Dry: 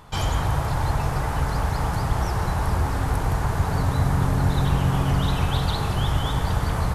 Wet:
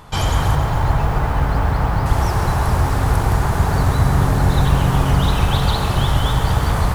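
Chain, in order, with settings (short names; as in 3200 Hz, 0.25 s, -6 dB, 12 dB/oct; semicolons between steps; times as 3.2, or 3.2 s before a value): 0.55–2.06 air absorption 220 m; lo-fi delay 0.135 s, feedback 80%, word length 7-bit, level -10.5 dB; gain +5.5 dB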